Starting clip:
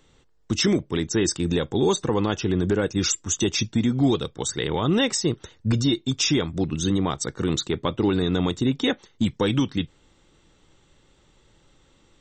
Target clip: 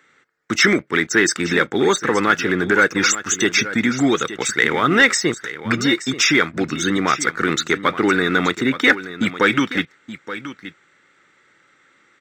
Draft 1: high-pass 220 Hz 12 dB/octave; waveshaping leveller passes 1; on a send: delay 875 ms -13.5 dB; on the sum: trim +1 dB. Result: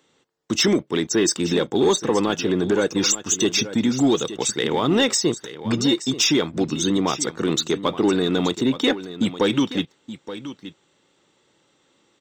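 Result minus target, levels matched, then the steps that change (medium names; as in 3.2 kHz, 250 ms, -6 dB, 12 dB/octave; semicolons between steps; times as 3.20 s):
2 kHz band -10.5 dB
add after high-pass: high-order bell 1.7 kHz +15 dB 1.1 oct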